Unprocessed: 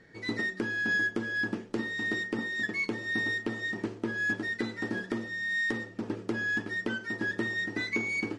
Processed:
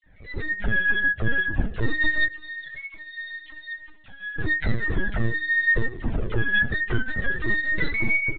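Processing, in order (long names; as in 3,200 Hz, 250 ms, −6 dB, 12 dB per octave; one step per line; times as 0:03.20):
high-pass filter 54 Hz 24 dB per octave
all-pass dispersion lows, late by 59 ms, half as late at 1,800 Hz
brickwall limiter −24 dBFS, peak gain reduction 7 dB
feedback echo with a high-pass in the loop 75 ms, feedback 32%, high-pass 210 Hz, level −15 dB
automatic gain control gain up to 10.5 dB
0:02.28–0:04.38: first difference
repeating echo 109 ms, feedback 55%, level −21.5 dB
transient designer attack −8 dB, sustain −4 dB
linear-prediction vocoder at 8 kHz pitch kept
low-shelf EQ 190 Hz +7.5 dB
flanger whose copies keep moving one way falling 2 Hz
level +3.5 dB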